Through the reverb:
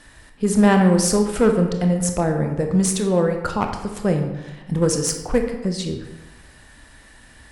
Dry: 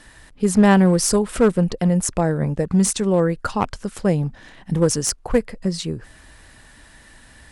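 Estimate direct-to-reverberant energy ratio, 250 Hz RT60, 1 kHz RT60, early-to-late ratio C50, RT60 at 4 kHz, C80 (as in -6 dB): 4.0 dB, 1.1 s, 1.1 s, 6.5 dB, 0.70 s, 9.0 dB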